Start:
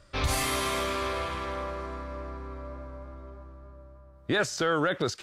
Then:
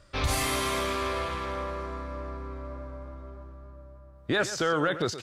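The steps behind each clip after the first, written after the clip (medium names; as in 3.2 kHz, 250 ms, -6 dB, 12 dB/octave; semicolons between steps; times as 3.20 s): delay 123 ms -13 dB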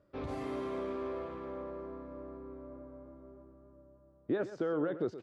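band-pass filter 330 Hz, Q 1.2; trim -2.5 dB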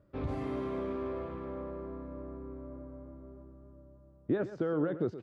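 tone controls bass +8 dB, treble -6 dB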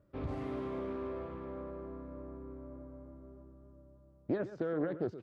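loudspeaker Doppler distortion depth 0.31 ms; trim -3 dB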